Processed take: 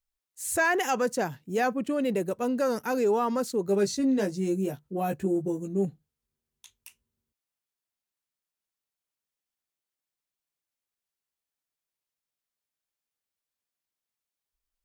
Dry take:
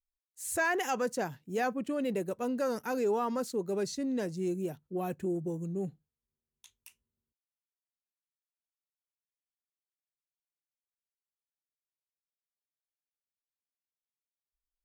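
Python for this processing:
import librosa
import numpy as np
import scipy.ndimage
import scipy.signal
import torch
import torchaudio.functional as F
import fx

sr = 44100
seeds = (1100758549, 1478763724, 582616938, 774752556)

y = fx.doubler(x, sr, ms=15.0, db=-4, at=(3.66, 5.85))
y = y * 10.0 ** (5.0 / 20.0)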